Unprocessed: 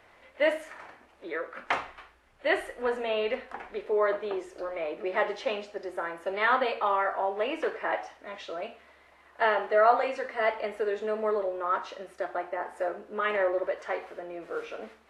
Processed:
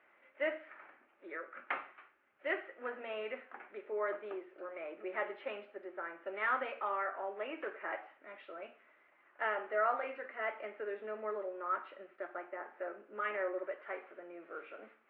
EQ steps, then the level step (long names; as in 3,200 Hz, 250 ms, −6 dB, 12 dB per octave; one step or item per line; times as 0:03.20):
high-frequency loss of the air 180 metres
loudspeaker in its box 410–2,400 Hz, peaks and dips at 470 Hz −9 dB, 700 Hz −7 dB, 990 Hz −8 dB, 1,800 Hz −4 dB
parametric band 820 Hz −2.5 dB
−2.5 dB